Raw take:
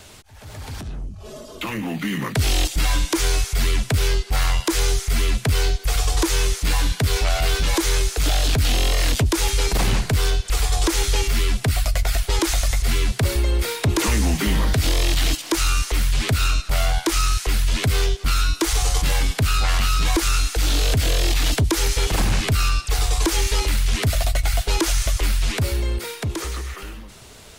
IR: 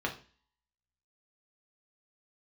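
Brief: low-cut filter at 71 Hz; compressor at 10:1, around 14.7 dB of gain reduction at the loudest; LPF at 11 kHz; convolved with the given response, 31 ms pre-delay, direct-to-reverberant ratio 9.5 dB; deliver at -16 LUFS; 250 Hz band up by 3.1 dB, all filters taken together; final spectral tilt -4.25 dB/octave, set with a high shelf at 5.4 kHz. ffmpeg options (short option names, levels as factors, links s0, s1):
-filter_complex "[0:a]highpass=71,lowpass=11000,equalizer=f=250:t=o:g=4.5,highshelf=f=5400:g=-8.5,acompressor=threshold=0.0316:ratio=10,asplit=2[s0][s1];[1:a]atrim=start_sample=2205,adelay=31[s2];[s1][s2]afir=irnorm=-1:irlink=0,volume=0.168[s3];[s0][s3]amix=inputs=2:normalize=0,volume=7.94"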